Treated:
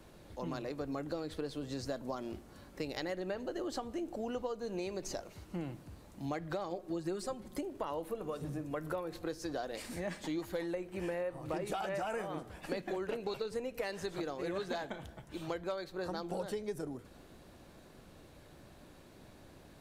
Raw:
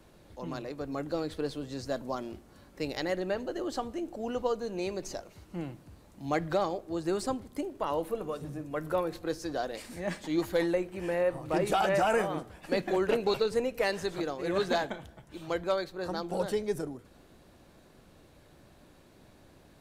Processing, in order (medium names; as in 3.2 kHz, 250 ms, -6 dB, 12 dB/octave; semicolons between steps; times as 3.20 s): 6.70–7.59 s: comb 5.5 ms, depth 81%; compression 6:1, threshold -36 dBFS, peak gain reduction 14 dB; trim +1 dB